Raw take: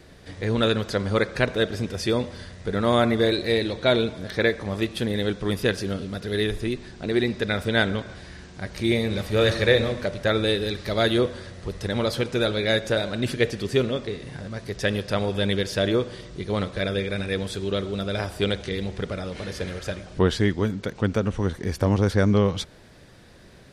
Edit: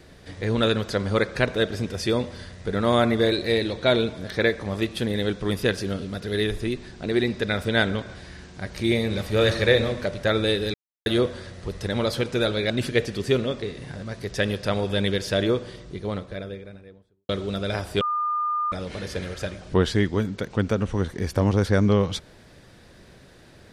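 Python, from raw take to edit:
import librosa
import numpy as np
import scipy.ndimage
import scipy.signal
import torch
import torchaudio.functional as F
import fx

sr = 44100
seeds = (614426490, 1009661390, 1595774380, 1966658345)

y = fx.studio_fade_out(x, sr, start_s=15.83, length_s=1.91)
y = fx.edit(y, sr, fx.silence(start_s=10.74, length_s=0.32),
    fx.cut(start_s=12.7, length_s=0.45),
    fx.bleep(start_s=18.46, length_s=0.71, hz=1210.0, db=-22.0), tone=tone)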